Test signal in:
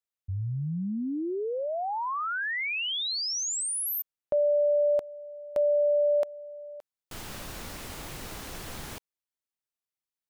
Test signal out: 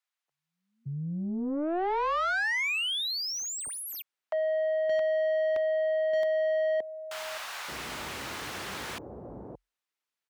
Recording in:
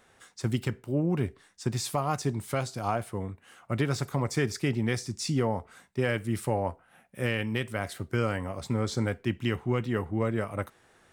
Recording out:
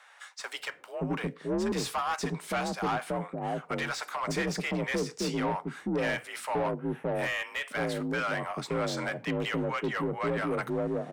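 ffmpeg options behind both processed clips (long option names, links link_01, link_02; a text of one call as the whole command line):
ffmpeg -i in.wav -filter_complex "[0:a]acrossover=split=620[link_01][link_02];[link_01]adelay=570[link_03];[link_03][link_02]amix=inputs=2:normalize=0,afreqshift=44,asplit=2[link_04][link_05];[link_05]highpass=frequency=720:poles=1,volume=22dB,asoftclip=type=tanh:threshold=-14.5dB[link_06];[link_04][link_06]amix=inputs=2:normalize=0,lowpass=frequency=2600:poles=1,volume=-6dB,volume=-6dB" out.wav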